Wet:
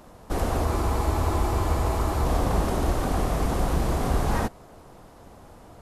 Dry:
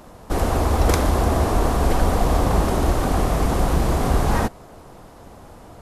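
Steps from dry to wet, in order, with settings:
frozen spectrum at 0:00.67, 1.56 s
level −5 dB

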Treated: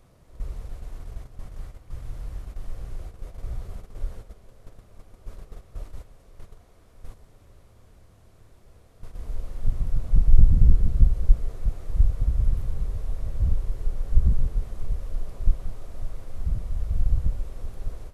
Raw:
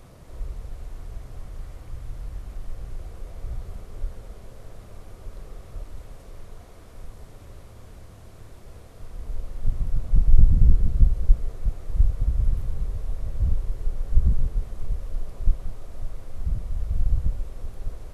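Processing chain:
noise gate −35 dBFS, range −9 dB

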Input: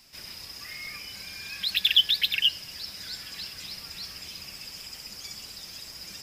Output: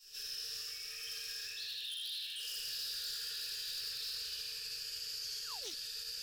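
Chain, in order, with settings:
source passing by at 0:02.45, 15 m/s, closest 3.8 metres
reversed playback
downward compressor 10 to 1, threshold −52 dBFS, peak gain reduction 32.5 dB
reversed playback
low-shelf EQ 61 Hz −7.5 dB
on a send: feedback echo with a high-pass in the loop 78 ms, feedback 63%, high-pass 190 Hz, level −5 dB
on the sum: rectangular room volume 780 cubic metres, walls mixed, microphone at 9.5 metres
wave folding −35.5 dBFS
drawn EQ curve 110 Hz 0 dB, 170 Hz −21 dB, 310 Hz −30 dB, 460 Hz +5 dB, 920 Hz −23 dB, 1,700 Hz +12 dB, 6,300 Hz +7 dB
sound drawn into the spectrogram fall, 0:05.41–0:05.74, 260–2,200 Hz −50 dBFS
brickwall limiter −32.5 dBFS, peak gain reduction 9.5 dB
phaser with its sweep stopped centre 420 Hz, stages 8
highs frequency-modulated by the lows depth 0.21 ms
level +2.5 dB

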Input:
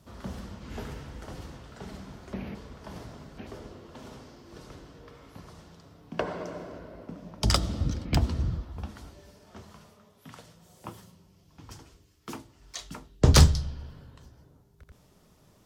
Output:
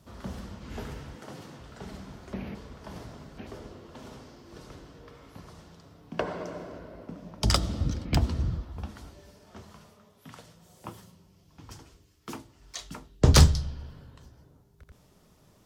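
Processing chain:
0:01.15–0:01.59: high-pass filter 120 Hz 24 dB per octave

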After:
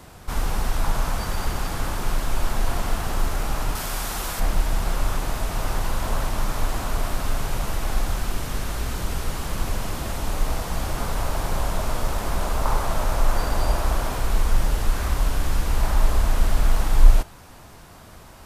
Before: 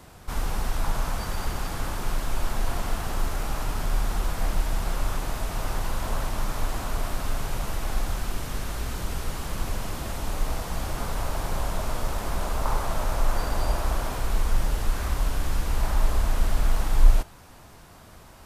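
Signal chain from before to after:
0:03.75–0:04.40: spectral tilt +2 dB per octave
level +3.5 dB

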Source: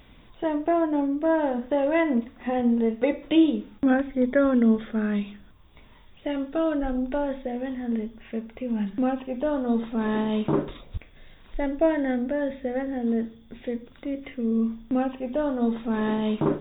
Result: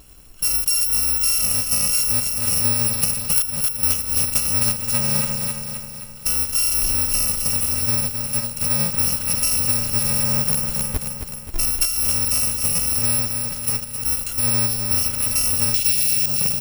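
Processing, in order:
samples in bit-reversed order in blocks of 128 samples
in parallel at −8 dB: log-companded quantiser 2 bits
0:15.74–0:16.26: on the sum: high shelf with overshoot 1,900 Hz +12 dB, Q 1.5
repeating echo 264 ms, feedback 55%, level −8.5 dB
downward compressor 10 to 1, threshold −21 dBFS, peak gain reduction 15 dB
level +5 dB

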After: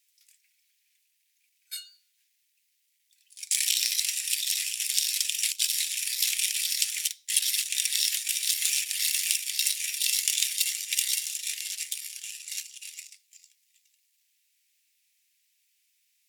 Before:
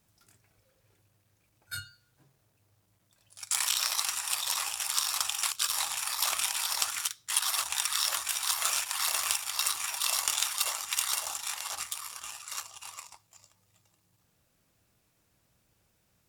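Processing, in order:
Butterworth high-pass 2,000 Hz 48 dB per octave
level +3.5 dB

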